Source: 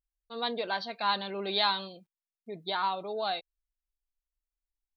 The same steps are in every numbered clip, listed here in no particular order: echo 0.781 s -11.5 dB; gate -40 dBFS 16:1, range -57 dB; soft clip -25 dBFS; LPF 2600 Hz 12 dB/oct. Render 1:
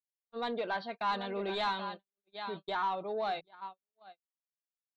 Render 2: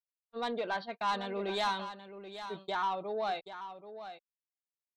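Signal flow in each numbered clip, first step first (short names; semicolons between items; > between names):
echo > soft clip > gate > LPF; LPF > soft clip > gate > echo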